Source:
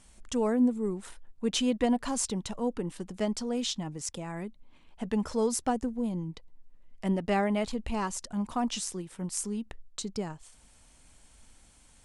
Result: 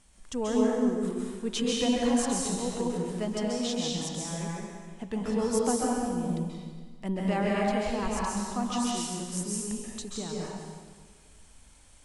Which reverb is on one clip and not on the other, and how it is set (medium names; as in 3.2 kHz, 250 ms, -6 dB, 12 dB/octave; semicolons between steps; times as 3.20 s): plate-style reverb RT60 1.6 s, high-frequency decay 0.95×, pre-delay 120 ms, DRR -4.5 dB; trim -3.5 dB